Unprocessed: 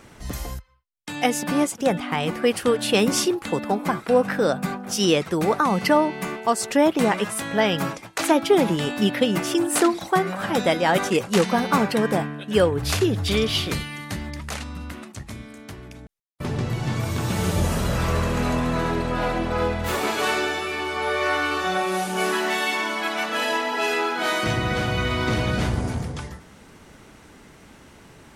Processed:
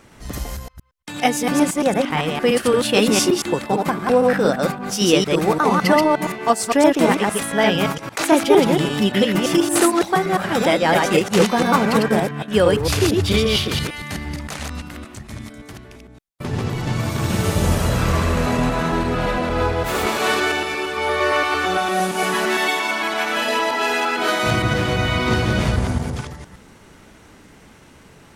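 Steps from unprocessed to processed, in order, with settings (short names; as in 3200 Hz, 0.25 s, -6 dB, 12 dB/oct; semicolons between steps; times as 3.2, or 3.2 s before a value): reverse delay 0.114 s, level -1.5 dB; in parallel at -7 dB: crossover distortion -32 dBFS; on the sum: gain -1 dB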